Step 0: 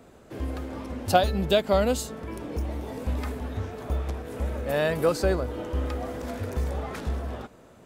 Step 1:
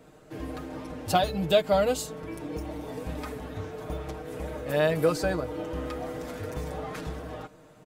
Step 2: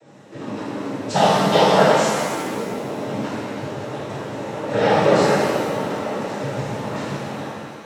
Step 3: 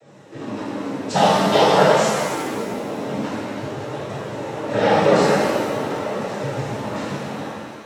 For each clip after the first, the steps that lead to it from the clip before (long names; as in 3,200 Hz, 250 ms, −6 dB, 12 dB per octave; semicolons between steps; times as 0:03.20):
comb filter 6.5 ms, depth 76%; level −3 dB
cochlear-implant simulation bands 12; reverb with rising layers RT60 1.7 s, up +7 semitones, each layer −8 dB, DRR −8.5 dB
flanger 0.48 Hz, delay 1.5 ms, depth 2.9 ms, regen −67%; level +4.5 dB